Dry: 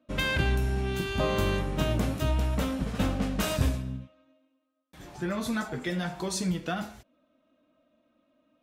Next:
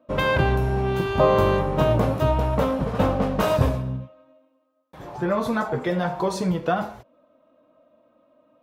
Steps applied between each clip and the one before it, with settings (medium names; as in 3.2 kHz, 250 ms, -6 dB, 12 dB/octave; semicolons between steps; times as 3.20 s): ten-band graphic EQ 125 Hz +8 dB, 500 Hz +11 dB, 1 kHz +11 dB, 8 kHz -6 dB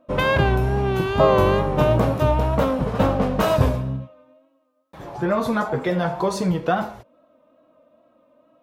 wow and flutter 50 cents; trim +2 dB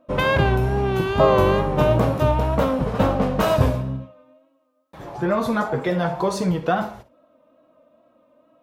flutter echo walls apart 9.8 m, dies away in 0.22 s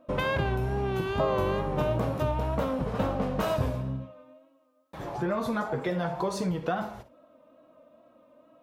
compression 2:1, threshold -32 dBFS, peak gain reduction 11.5 dB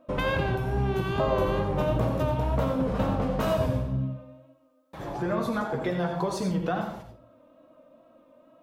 reverberation RT60 0.30 s, pre-delay 81 ms, DRR 7 dB